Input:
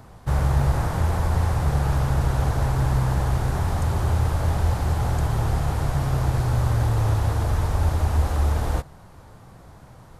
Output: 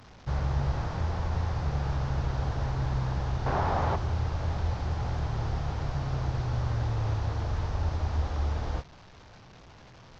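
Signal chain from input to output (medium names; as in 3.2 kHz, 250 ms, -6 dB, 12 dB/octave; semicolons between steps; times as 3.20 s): one-bit delta coder 32 kbps, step -37.5 dBFS; 3.46–3.96 s: peaking EQ 790 Hz +12.5 dB 3 oct; trim -8 dB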